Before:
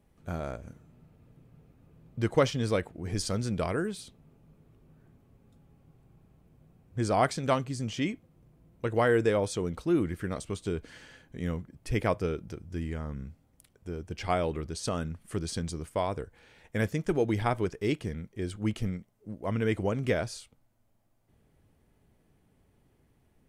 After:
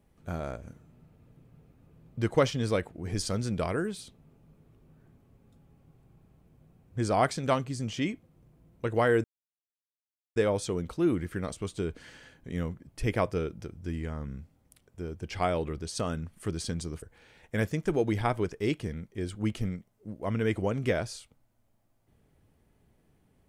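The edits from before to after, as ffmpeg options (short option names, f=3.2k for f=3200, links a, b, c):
-filter_complex "[0:a]asplit=3[a][b][c];[a]atrim=end=9.24,asetpts=PTS-STARTPTS,afade=t=out:st=9.236:d=0.004:c=hsin,apad=pad_dur=1.12[d];[b]atrim=start=9.24:end=15.902,asetpts=PTS-STARTPTS,afade=t=in:d=0.004:c=hsin[e];[c]atrim=start=16.228[f];[d][e]concat=n=2:v=0:a=1[g];[g][f]acrossfade=d=0.004:c1=hsin:c2=hsin"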